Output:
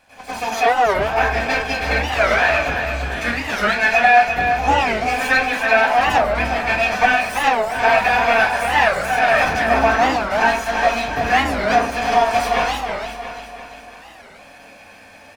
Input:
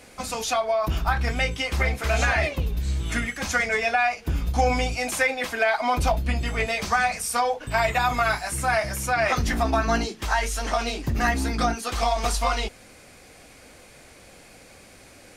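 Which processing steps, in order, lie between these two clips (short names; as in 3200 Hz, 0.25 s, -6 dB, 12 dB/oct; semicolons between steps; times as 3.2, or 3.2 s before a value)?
minimum comb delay 1.2 ms; tone controls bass -11 dB, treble -10 dB; feedback echo 0.341 s, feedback 51%, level -7 dB; reverb RT60 0.35 s, pre-delay 90 ms, DRR -13 dB; record warp 45 rpm, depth 250 cents; gain -3.5 dB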